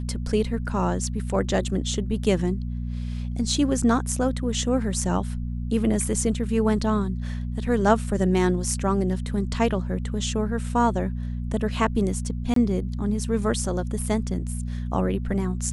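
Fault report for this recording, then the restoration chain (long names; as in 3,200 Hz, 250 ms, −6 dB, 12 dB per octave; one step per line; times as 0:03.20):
mains hum 60 Hz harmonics 4 −29 dBFS
0:12.54–0:12.56: drop-out 23 ms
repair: hum removal 60 Hz, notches 4
repair the gap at 0:12.54, 23 ms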